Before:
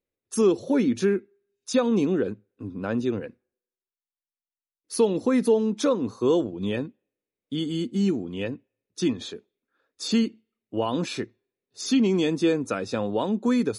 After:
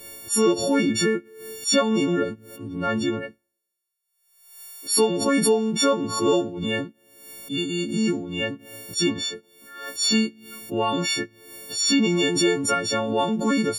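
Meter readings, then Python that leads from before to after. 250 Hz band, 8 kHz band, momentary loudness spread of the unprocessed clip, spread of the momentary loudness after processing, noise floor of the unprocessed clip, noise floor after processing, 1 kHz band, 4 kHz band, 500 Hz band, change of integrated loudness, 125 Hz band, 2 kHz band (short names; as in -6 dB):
+0.5 dB, +12.0 dB, 13 LU, 16 LU, under -85 dBFS, -76 dBFS, +6.5 dB, +10.5 dB, +1.0 dB, +2.5 dB, +1.0 dB, +8.5 dB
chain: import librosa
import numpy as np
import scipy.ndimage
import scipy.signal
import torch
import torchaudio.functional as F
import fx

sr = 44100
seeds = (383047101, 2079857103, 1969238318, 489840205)

y = fx.freq_snap(x, sr, grid_st=4)
y = fx.dynamic_eq(y, sr, hz=1400.0, q=0.79, threshold_db=-40.0, ratio=4.0, max_db=4)
y = fx.pre_swell(y, sr, db_per_s=66.0)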